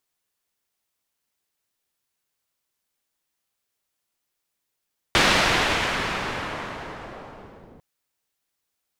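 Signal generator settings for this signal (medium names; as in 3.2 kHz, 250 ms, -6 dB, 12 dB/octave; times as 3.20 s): swept filtered noise white, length 2.65 s lowpass, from 3.1 kHz, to 410 Hz, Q 0.78, linear, gain ramp -24 dB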